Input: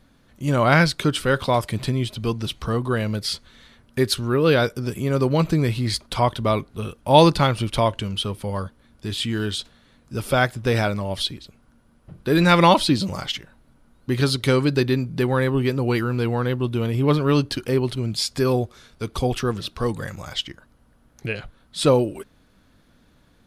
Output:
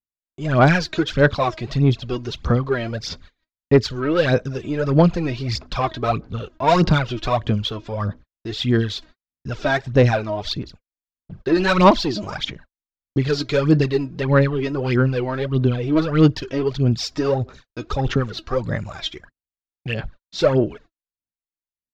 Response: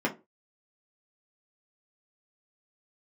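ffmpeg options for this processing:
-af "asetrate=47187,aresample=44100,aresample=16000,asoftclip=type=tanh:threshold=-13dB,aresample=44100,agate=range=-55dB:threshold=-44dB:ratio=16:detection=peak,aphaser=in_gain=1:out_gain=1:delay=3.2:decay=0.66:speed=1.6:type=sinusoidal,highshelf=frequency=6000:gain=-11"

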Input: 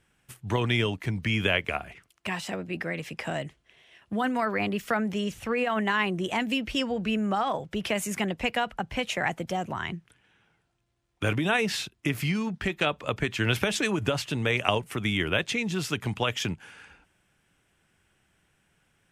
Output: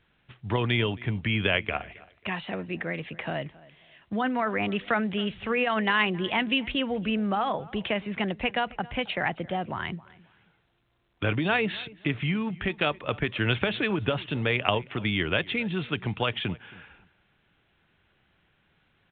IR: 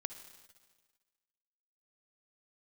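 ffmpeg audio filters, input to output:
-filter_complex "[0:a]asettb=1/sr,asplit=3[link_01][link_02][link_03];[link_01]atrim=end=4.684[link_04];[link_02]atrim=start=4.68:end=6.72,asetpts=PTS-STARTPTS,afade=type=in:duration=0.004:curve=qsin,afade=type=out:start_time=2.036:duration=0.004:curve=qsin,highshelf=frequency=2400:gain=7.5[link_05];[link_03]atrim=start=6.716[link_06];[link_04][link_05]acrossfade=duration=0.004:curve1=hsin:curve2=qsin[link_07];[link_07][link_06]acrossfade=duration=0.004:curve1=qsin:curve2=hsin,asplit=2[link_08][link_09];[link_09]adelay=270,lowpass=frequency=2800:poles=1,volume=-21dB,asplit=2[link_10][link_11];[link_11]adelay=270,lowpass=frequency=2800:poles=1,volume=0.26[link_12];[link_08][link_10][link_12]amix=inputs=3:normalize=0" -ar 8000 -c:a pcm_alaw

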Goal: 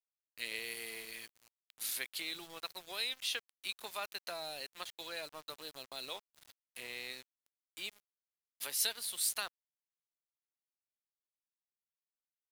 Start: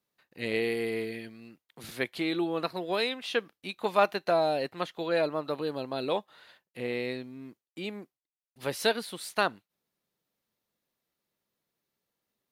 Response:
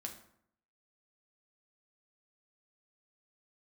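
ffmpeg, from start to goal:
-filter_complex "[0:a]acrossover=split=160[link_01][link_02];[link_02]acompressor=threshold=-37dB:ratio=2[link_03];[link_01][link_03]amix=inputs=2:normalize=0,aderivative,aeval=exprs='val(0)*gte(abs(val(0)),0.00141)':channel_layout=same,volume=9dB"

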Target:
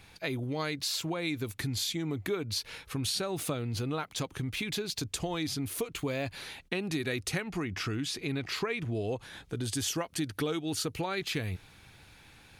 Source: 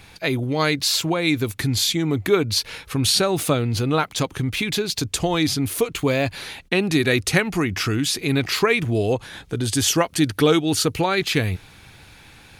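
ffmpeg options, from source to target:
ffmpeg -i in.wav -filter_complex "[0:a]asettb=1/sr,asplit=3[link_01][link_02][link_03];[link_01]atrim=end=7.444[link_04];[link_02]atrim=start=7.44:end=9.13,asetpts=PTS-STARTPTS,afade=type=in:duration=0.004:curve=qsin,afade=type=out:start_time=1.686:duration=0.004:curve=qsin,highshelf=frequency=9100:gain=-11[link_05];[link_03]atrim=start=9.126[link_06];[link_04][link_05]acrossfade=duration=0.004:curve1=hsin:curve2=qsin[link_07];[link_07][link_06]acrossfade=duration=0.004:curve1=qsin:curve2=hsin,acompressor=threshold=-21dB:ratio=3,volume=-9dB" out.wav

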